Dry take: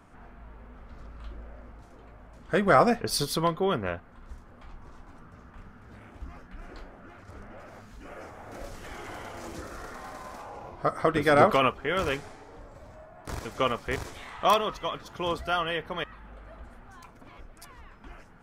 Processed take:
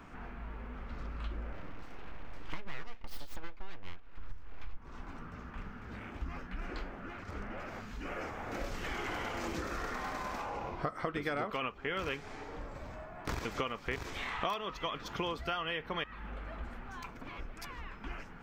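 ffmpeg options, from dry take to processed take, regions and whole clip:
-filter_complex "[0:a]asettb=1/sr,asplit=3[a][b][c];[a]atrim=end=1.524[d];[b]atrim=start=1.52:end=4.77,asetpts=PTS-STARTPTS,afade=t=in:d=0.004:c=qsin,afade=t=out:st=3.246:d=0.004:c=qsin,bandreject=f=6.9k:w=6.1,aeval=exprs='abs(val(0))':c=same,asubboost=boost=8.5:cutoff=61[e];[c]atrim=start=4.766[f];[d][e]acrossfade=d=0.004:c1=hsin:c2=qsin[g];[g][f]acrossfade=d=0.004:c1=qsin:c2=hsin,equalizer=f=100:t=o:w=0.67:g=-4,equalizer=f=630:t=o:w=0.67:g=-4,equalizer=f=2.5k:t=o:w=0.67:g=4,equalizer=f=10k:t=o:w=0.67:g=-12,acompressor=threshold=-37dB:ratio=10,volume=4.5dB"

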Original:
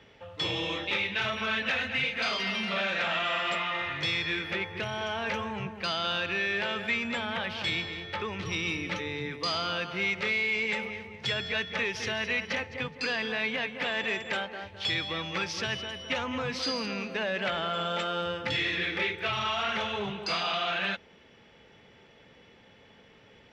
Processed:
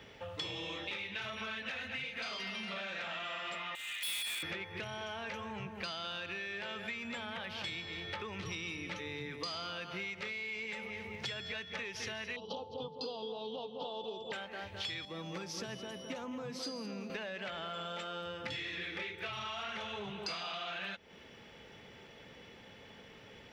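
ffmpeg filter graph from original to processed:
-filter_complex "[0:a]asettb=1/sr,asplit=3[a][b][c];[a]atrim=end=3.754[d];[b]atrim=start=3.75:end=4.43,asetpts=PTS-STARTPTS,afade=t=in:d=0.004:c=qsin,afade=t=out:st=0.676:d=0.004:c=qsin,highpass=f=3k:t=q:w=1.9,highshelf=f=4.4k:g=-8.5,asoftclip=type=hard:threshold=-36dB[e];[c]atrim=start=4.426[f];[d][e]acrossfade=d=0.004:c1=hsin:c2=qsin[g];[g][f]acrossfade=d=0.004:c1=qsin:c2=hsin,asettb=1/sr,asplit=3[h][i][j];[h]atrim=end=12.364[k];[i]atrim=start=12.36:end=14.32,asetpts=PTS-STARTPTS,afade=t=in:d=0.004:c=qsin,afade=t=out:st=1.956:d=0.004:c=qsin,asuperstop=centerf=1900:order=8:qfactor=0.81,highpass=110,equalizer=f=450:t=q:w=4:g=9,equalizer=f=860:t=q:w=4:g=9,equalizer=f=1.5k:t=q:w=4:g=9,equalizer=f=3.1k:t=q:w=4:g=8,lowpass=f=4.6k:w=0.5412,lowpass=f=4.6k:w=1.3066[l];[j]atrim=start=14.316[m];[k][l]acrossfade=d=0.004:c1=hsin:c2=qsin[n];[n][m]acrossfade=d=0.004:c1=qsin:c2=hsin,asettb=1/sr,asplit=3[o][p][q];[o]atrim=end=15.054[r];[p]atrim=start=15.05:end=17.1,asetpts=PTS-STARTPTS,afade=t=in:d=0.004:c=qsin,afade=t=out:st=2.046:d=0.004:c=qsin,highpass=f=140:w=0.5412,highpass=f=140:w=1.3066,equalizer=f=2.5k:t=o:w=2.5:g=-13[s];[q]atrim=start=17.096[t];[r][s]acrossfade=d=0.004:c1=hsin:c2=qsin[u];[u][t]acrossfade=d=0.004:c1=qsin:c2=hsin,acompressor=threshold=-40dB:ratio=12,highshelf=f=8.5k:g=10.5,volume=1.5dB"

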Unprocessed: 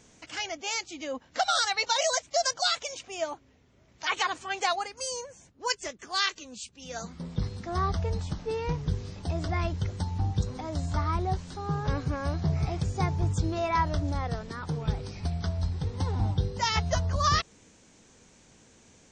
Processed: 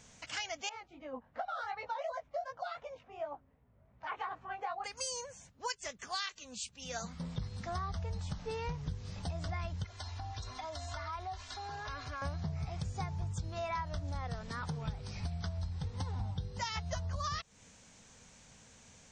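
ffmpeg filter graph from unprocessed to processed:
-filter_complex "[0:a]asettb=1/sr,asplit=3[a][b][c];[a]atrim=end=0.694[d];[b]atrim=start=0.69:end=4.84,asetpts=PTS-STARTPTS,afade=t=in:d=0.004:c=qsin,afade=t=out:st=4.146:d=0.004:c=qsin,lowpass=1.1k,flanger=delay=16.5:depth=5.5:speed=2.7[e];[c]atrim=start=4.836[f];[d][e]acrossfade=d=0.004:c1=hsin:c2=qsin[g];[g][f]acrossfade=d=0.004:c1=qsin:c2=hsin,asettb=1/sr,asplit=3[h][i][j];[h]atrim=end=9.844[k];[i]atrim=start=9.84:end=12.22,asetpts=PTS-STARTPTS,afade=t=in:d=0.004:c=qsin,afade=t=out:st=2.376:d=0.004:c=qsin,acrossover=split=580 7100:gain=0.224 1 0.158[l][m][n];[l][m][n]amix=inputs=3:normalize=0,aecho=1:1:2.9:0.99,atrim=end_sample=104958,acompressor=threshold=-37dB:ratio=4:attack=3.2:release=140:knee=1:detection=peak[o];[j]atrim=start=12.216[p];[k][o]acrossfade=d=0.004:c1=hsin:c2=qsin[q];[q][p]acrossfade=d=0.004:c1=qsin:c2=hsin,equalizer=f=340:t=o:w=0.72:g=-12.5,acompressor=threshold=-35dB:ratio=6"

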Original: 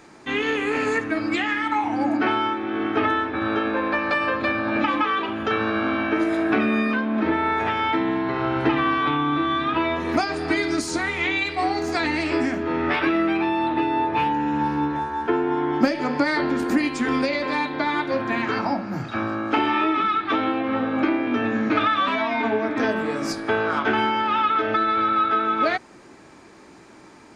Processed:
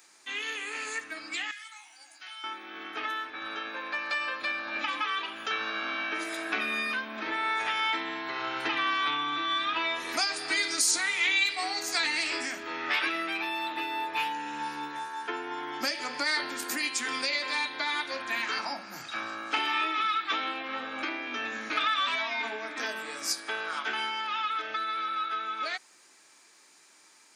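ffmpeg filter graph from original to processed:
-filter_complex "[0:a]asettb=1/sr,asplit=3[a][b][c];[a]atrim=end=1.514[d];[b]atrim=start=1.51:end=2.44,asetpts=PTS-STARTPTS,afade=t=in:d=0.004:c=qsin,afade=t=out:st=0.926:d=0.004:c=qsin,aderivative,asplit=2[e][f];[f]adelay=15,volume=-5dB[g];[e][g]amix=inputs=2:normalize=0,atrim=end_sample=41013[h];[c]atrim=start=2.436[i];[d][h]acrossfade=d=0.004:c1=hsin:c2=qsin[j];[j][i]acrossfade=d=0.004:c1=qsin:c2=hsin,dynaudnorm=f=630:g=17:m=11.5dB,aderivative,volume=2.5dB"

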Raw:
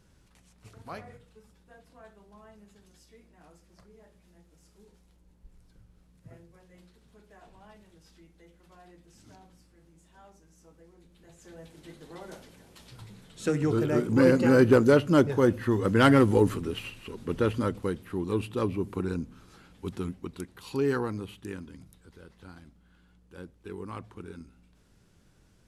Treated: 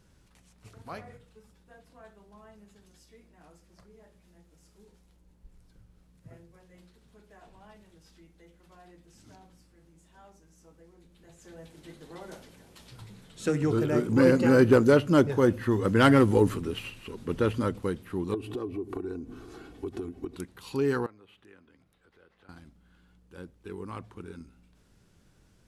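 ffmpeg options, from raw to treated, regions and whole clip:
-filter_complex "[0:a]asettb=1/sr,asplit=3[a][b][c];[a]atrim=end=18.344[d];[b]atrim=start=18.34:end=20.36,asetpts=PTS-STARTPTS,afade=t=in:d=0.004:c=qsin,afade=t=out:st=2.016:d=0.004:c=qsin,equalizer=f=350:t=o:w=2.8:g=11.5,acompressor=threshold=-33dB:ratio=8:attack=3.2:release=140:knee=1:detection=peak,aecho=1:1:2.7:0.66,atrim=end_sample=89082[e];[c]atrim=start=20.356[f];[d][e]acrossfade=d=0.004:c1=hsin:c2=qsin[g];[g][f]acrossfade=d=0.004:c1=qsin:c2=hsin,asettb=1/sr,asplit=3[h][i][j];[h]atrim=end=21.064[k];[i]atrim=start=21.06:end=22.49,asetpts=PTS-STARTPTS,afade=t=in:d=0.004:c=qsin,afade=t=out:st=1.426:d=0.004:c=qsin,bandreject=f=950:w=11,acompressor=threshold=-53dB:ratio=2:attack=3.2:release=140:knee=1:detection=peak,acrossover=split=390 3400:gain=0.224 1 0.2[l][m][n];[l][m][n]amix=inputs=3:normalize=0[o];[j]atrim=start=22.486[p];[k][o]acrossfade=d=0.004:c1=hsin:c2=qsin[q];[q][p]acrossfade=d=0.004:c1=qsin:c2=hsin"

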